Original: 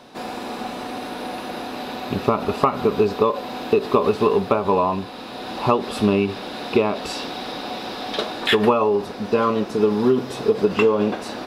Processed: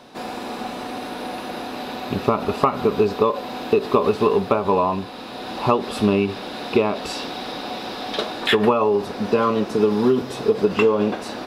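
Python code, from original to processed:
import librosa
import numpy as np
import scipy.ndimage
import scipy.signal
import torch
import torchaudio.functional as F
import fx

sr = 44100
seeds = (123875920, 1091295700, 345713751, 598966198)

y = fx.band_squash(x, sr, depth_pct=40, at=(8.52, 10.22))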